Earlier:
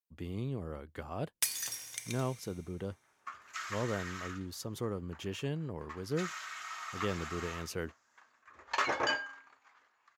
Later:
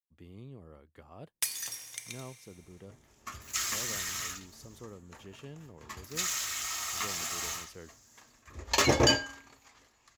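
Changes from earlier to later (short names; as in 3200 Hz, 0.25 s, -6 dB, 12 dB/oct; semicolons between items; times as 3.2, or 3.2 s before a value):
speech -10.5 dB; second sound: remove band-pass 1300 Hz, Q 1.4; master: add notch 1500 Hz, Q 17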